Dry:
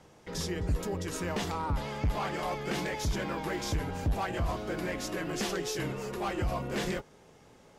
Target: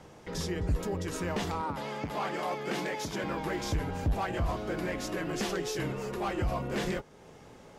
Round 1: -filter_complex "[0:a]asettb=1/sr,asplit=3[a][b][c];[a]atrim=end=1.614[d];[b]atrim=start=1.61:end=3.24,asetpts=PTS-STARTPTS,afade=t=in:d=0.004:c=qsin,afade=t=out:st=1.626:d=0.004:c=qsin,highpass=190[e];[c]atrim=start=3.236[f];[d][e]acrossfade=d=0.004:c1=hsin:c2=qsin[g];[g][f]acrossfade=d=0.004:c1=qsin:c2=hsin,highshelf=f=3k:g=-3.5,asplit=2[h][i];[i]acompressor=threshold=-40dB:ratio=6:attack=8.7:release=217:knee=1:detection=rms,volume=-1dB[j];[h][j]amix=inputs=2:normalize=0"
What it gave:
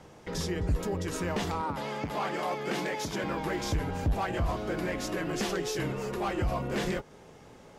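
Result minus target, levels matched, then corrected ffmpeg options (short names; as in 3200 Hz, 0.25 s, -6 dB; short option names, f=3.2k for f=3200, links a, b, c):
compressor: peak gain reduction -9 dB
-filter_complex "[0:a]asettb=1/sr,asplit=3[a][b][c];[a]atrim=end=1.614[d];[b]atrim=start=1.61:end=3.24,asetpts=PTS-STARTPTS,afade=t=in:d=0.004:c=qsin,afade=t=out:st=1.626:d=0.004:c=qsin,highpass=190[e];[c]atrim=start=3.236[f];[d][e]acrossfade=d=0.004:c1=hsin:c2=qsin[g];[g][f]acrossfade=d=0.004:c1=qsin:c2=hsin,highshelf=f=3k:g=-3.5,asplit=2[h][i];[i]acompressor=threshold=-50.5dB:ratio=6:attack=8.7:release=217:knee=1:detection=rms,volume=-1dB[j];[h][j]amix=inputs=2:normalize=0"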